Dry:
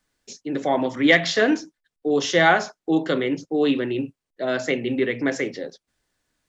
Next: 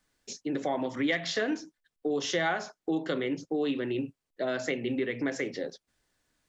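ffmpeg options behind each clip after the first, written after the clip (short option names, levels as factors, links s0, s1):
-af "acompressor=threshold=0.0398:ratio=3,volume=0.891"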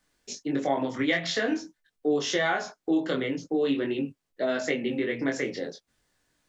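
-af "flanger=delay=20:depth=2.7:speed=0.45,volume=2"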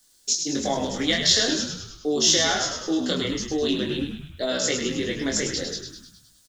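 -filter_complex "[0:a]asplit=8[s0][s1][s2][s3][s4][s5][s6][s7];[s1]adelay=103,afreqshift=-68,volume=0.473[s8];[s2]adelay=206,afreqshift=-136,volume=0.266[s9];[s3]adelay=309,afreqshift=-204,volume=0.148[s10];[s4]adelay=412,afreqshift=-272,volume=0.0832[s11];[s5]adelay=515,afreqshift=-340,volume=0.0468[s12];[s6]adelay=618,afreqshift=-408,volume=0.026[s13];[s7]adelay=721,afreqshift=-476,volume=0.0146[s14];[s0][s8][s9][s10][s11][s12][s13][s14]amix=inputs=8:normalize=0,aexciter=amount=5.2:drive=6:freq=3300"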